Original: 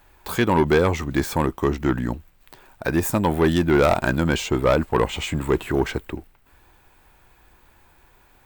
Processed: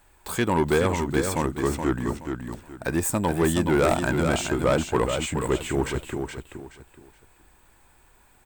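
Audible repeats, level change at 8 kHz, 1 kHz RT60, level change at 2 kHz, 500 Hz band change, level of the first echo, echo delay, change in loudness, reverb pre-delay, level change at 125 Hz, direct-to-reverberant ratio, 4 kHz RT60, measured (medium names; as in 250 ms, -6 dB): 3, +3.5 dB, no reverb, -3.0 dB, -3.0 dB, -6.0 dB, 423 ms, -3.0 dB, no reverb, -3.0 dB, no reverb, no reverb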